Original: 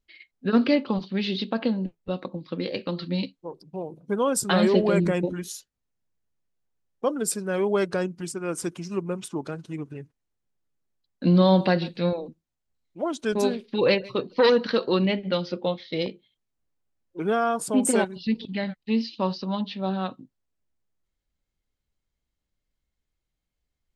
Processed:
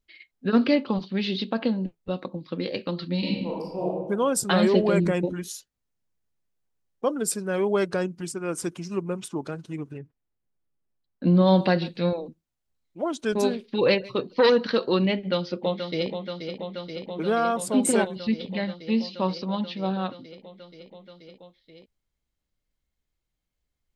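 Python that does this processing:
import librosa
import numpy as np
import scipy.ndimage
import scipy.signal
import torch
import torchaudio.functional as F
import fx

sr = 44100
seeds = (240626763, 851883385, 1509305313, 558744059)

y = fx.reverb_throw(x, sr, start_s=3.19, length_s=0.67, rt60_s=1.1, drr_db=-6.5)
y = fx.spacing_loss(y, sr, db_at_10k=23, at=(9.97, 11.46), fade=0.02)
y = fx.echo_throw(y, sr, start_s=15.15, length_s=0.94, ms=480, feedback_pct=85, wet_db=-7.5)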